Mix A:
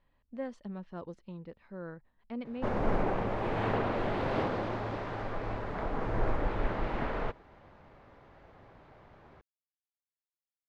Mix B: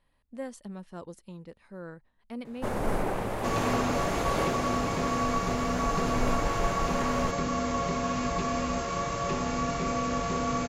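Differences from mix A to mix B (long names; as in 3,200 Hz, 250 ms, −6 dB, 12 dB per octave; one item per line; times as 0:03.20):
second sound: unmuted
master: remove high-frequency loss of the air 220 metres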